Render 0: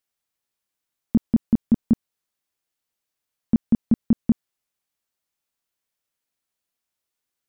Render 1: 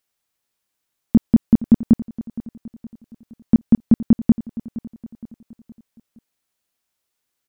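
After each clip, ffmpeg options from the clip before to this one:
-af "aecho=1:1:467|934|1401|1868:0.141|0.065|0.0299|0.0137,volume=5.5dB"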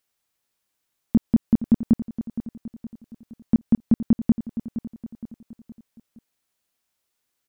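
-af "alimiter=limit=-9.5dB:level=0:latency=1:release=121"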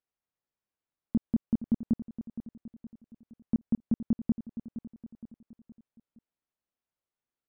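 -af "lowpass=f=1.1k:p=1,volume=-9dB"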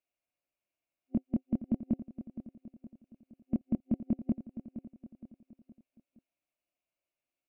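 -af "superequalizer=6b=2:8b=3.16:12b=3.16,volume=-3.5dB"

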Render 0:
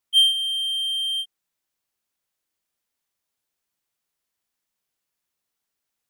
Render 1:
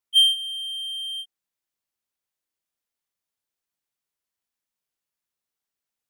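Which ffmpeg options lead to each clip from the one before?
-af "agate=range=-6dB:threshold=-22dB:ratio=16:detection=peak"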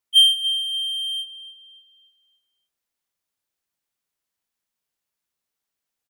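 -filter_complex "[0:a]asplit=2[a][b];[b]adelay=288,lowpass=f=4k:p=1,volume=-12.5dB,asplit=2[c][d];[d]adelay=288,lowpass=f=4k:p=1,volume=0.49,asplit=2[e][f];[f]adelay=288,lowpass=f=4k:p=1,volume=0.49,asplit=2[g][h];[h]adelay=288,lowpass=f=4k:p=1,volume=0.49,asplit=2[i][j];[j]adelay=288,lowpass=f=4k:p=1,volume=0.49[k];[a][c][e][g][i][k]amix=inputs=6:normalize=0,volume=3dB"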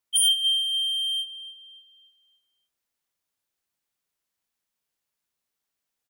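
-af "aeval=exprs='0.188*(abs(mod(val(0)/0.188+3,4)-2)-1)':c=same"

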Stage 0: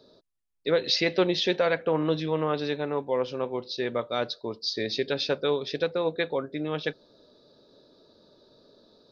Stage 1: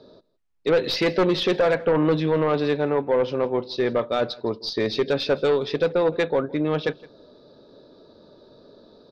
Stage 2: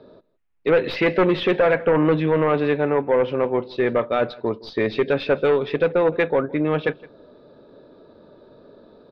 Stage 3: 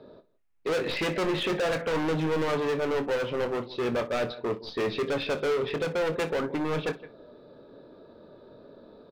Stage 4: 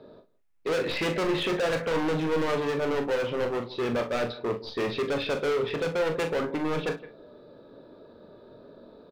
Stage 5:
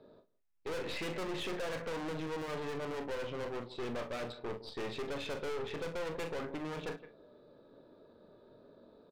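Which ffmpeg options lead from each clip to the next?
-af "aeval=exprs='0.266*(cos(1*acos(clip(val(0)/0.266,-1,1)))-cos(1*PI/2))+0.0188*(cos(4*acos(clip(val(0)/0.266,-1,1)))-cos(4*PI/2))+0.075*(cos(5*acos(clip(val(0)/0.266,-1,1)))-cos(5*PI/2))':c=same,aemphasis=mode=reproduction:type=75fm,aecho=1:1:164:0.0794"
-af "highshelf=f=3.6k:t=q:w=1.5:g=-13,volume=2dB"
-filter_complex "[0:a]asoftclip=type=hard:threshold=-23dB,asplit=2[a][b];[b]aecho=0:1:25|60:0.299|0.133[c];[a][c]amix=inputs=2:normalize=0,volume=-2.5dB"
-filter_complex "[0:a]asplit=2[a][b];[b]adelay=42,volume=-9dB[c];[a][c]amix=inputs=2:normalize=0"
-af "aeval=exprs='(tanh(28.2*val(0)+0.65)-tanh(0.65))/28.2':c=same,volume=-6dB"

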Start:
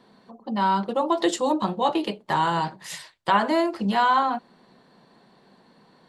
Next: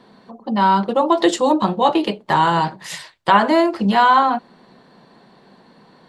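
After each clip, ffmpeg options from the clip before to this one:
-af "highshelf=f=7.5k:g=-6.5,volume=7dB"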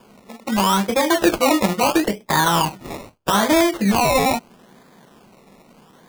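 -filter_complex "[0:a]acrossover=split=250|450|3100[a][b][c][d];[c]alimiter=limit=-11.5dB:level=0:latency=1:release=37[e];[a][b][e][d]amix=inputs=4:normalize=0,acrusher=samples=22:mix=1:aa=0.000001:lfo=1:lforange=13.2:lforate=0.77"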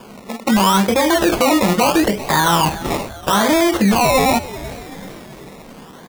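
-filter_complex "[0:a]asplit=5[a][b][c][d][e];[b]adelay=383,afreqshift=-130,volume=-24dB[f];[c]adelay=766,afreqshift=-260,volume=-29dB[g];[d]adelay=1149,afreqshift=-390,volume=-34.1dB[h];[e]adelay=1532,afreqshift=-520,volume=-39.1dB[i];[a][f][g][h][i]amix=inputs=5:normalize=0,alimiter=level_in=17.5dB:limit=-1dB:release=50:level=0:latency=1,volume=-7dB"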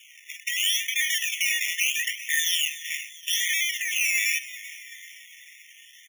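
-af "afftfilt=real='re*eq(mod(floor(b*sr/1024/1800),2),1)':imag='im*eq(mod(floor(b*sr/1024/1800),2),1)':win_size=1024:overlap=0.75"

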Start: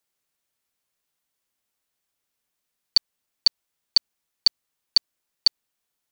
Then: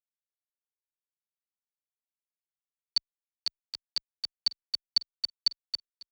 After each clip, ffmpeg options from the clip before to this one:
-filter_complex "[0:a]acrusher=bits=7:mix=0:aa=0.5,asplit=2[a][b];[b]aecho=0:1:774|1548|2322:0.473|0.0899|0.0171[c];[a][c]amix=inputs=2:normalize=0,asplit=2[d][e];[e]adelay=2.4,afreqshift=-0.36[f];[d][f]amix=inputs=2:normalize=1,volume=-6.5dB"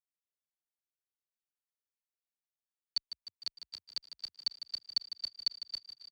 -filter_complex "[0:a]asplit=8[a][b][c][d][e][f][g][h];[b]adelay=152,afreqshift=31,volume=-11dB[i];[c]adelay=304,afreqshift=62,volume=-15.3dB[j];[d]adelay=456,afreqshift=93,volume=-19.6dB[k];[e]adelay=608,afreqshift=124,volume=-23.9dB[l];[f]adelay=760,afreqshift=155,volume=-28.2dB[m];[g]adelay=912,afreqshift=186,volume=-32.5dB[n];[h]adelay=1064,afreqshift=217,volume=-36.8dB[o];[a][i][j][k][l][m][n][o]amix=inputs=8:normalize=0,volume=-6.5dB"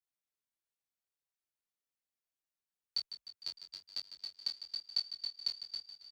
-filter_complex "[0:a]flanger=delay=19.5:depth=4.7:speed=1,asplit=2[a][b];[b]adelay=21,volume=-7dB[c];[a][c]amix=inputs=2:normalize=0,volume=1dB"

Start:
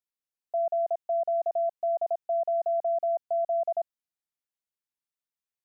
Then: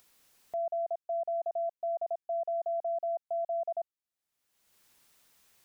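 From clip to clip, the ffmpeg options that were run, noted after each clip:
-af "acompressor=mode=upward:threshold=-35dB:ratio=2.5,volume=-5.5dB"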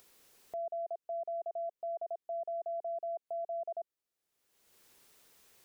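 -af "equalizer=f=420:t=o:w=0.8:g=7.5,alimiter=level_in=11dB:limit=-24dB:level=0:latency=1:release=112,volume=-11dB,volume=1.5dB"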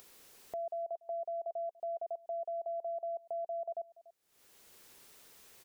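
-af "acompressor=mode=upward:threshold=-58dB:ratio=2.5,aecho=1:1:289:0.075,acompressor=threshold=-47dB:ratio=1.5,volume=3.5dB"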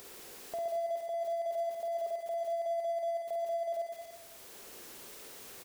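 -filter_complex "[0:a]aeval=exprs='val(0)+0.5*0.00355*sgn(val(0))':c=same,asplit=2[a][b];[b]aecho=0:1:50|120|218|355.2|547.3:0.631|0.398|0.251|0.158|0.1[c];[a][c]amix=inputs=2:normalize=0"

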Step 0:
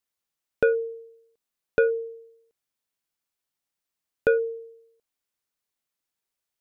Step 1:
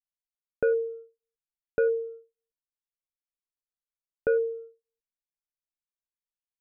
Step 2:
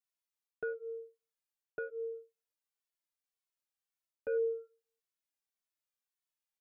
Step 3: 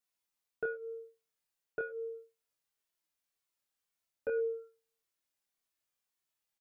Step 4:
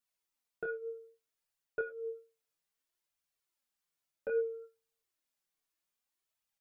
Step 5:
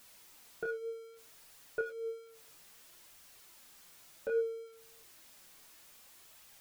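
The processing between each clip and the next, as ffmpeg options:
-af "lowpass=1.4k,anlmdn=1,alimiter=limit=-17.5dB:level=0:latency=1:release=92"
-filter_complex "[0:a]lowshelf=f=320:g=-11.5,areverse,acompressor=threshold=-34dB:ratio=10,areverse,asplit=2[a][b];[b]adelay=2.2,afreqshift=-1.8[c];[a][c]amix=inputs=2:normalize=1,volume=4.5dB"
-filter_complex "[0:a]asplit=2[a][b];[b]adelay=25,volume=-3.5dB[c];[a][c]amix=inputs=2:normalize=0,volume=3dB"
-af "flanger=delay=0.6:depth=6.5:regen=39:speed=0.62:shape=triangular,volume=3dB"
-af "aeval=exprs='val(0)+0.5*0.00266*sgn(val(0))':c=same"

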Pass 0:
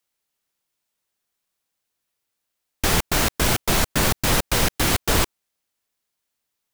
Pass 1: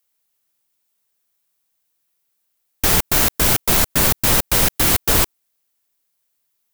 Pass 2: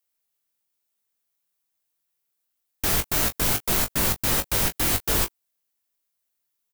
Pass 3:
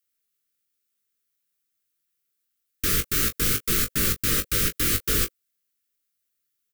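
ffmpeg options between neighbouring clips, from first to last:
-af "highshelf=f=10k:g=11.5,volume=1dB"
-af "aecho=1:1:20|38:0.473|0.126,volume=-8dB"
-af "asuperstop=centerf=780:order=12:qfactor=1.2"

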